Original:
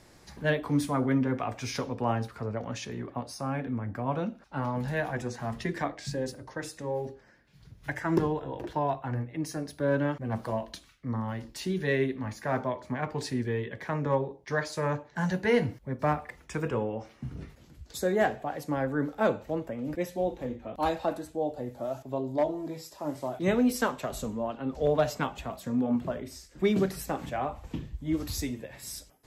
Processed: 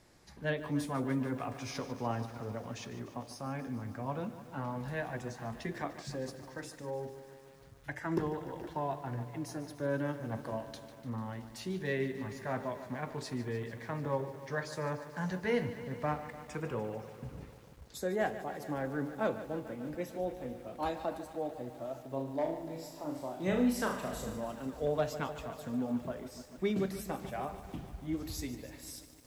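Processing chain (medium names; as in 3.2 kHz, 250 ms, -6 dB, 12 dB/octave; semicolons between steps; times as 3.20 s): 22.08–24.38 s: flutter echo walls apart 6.3 m, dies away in 0.46 s; bit-crushed delay 148 ms, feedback 80%, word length 8-bit, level -13 dB; trim -7 dB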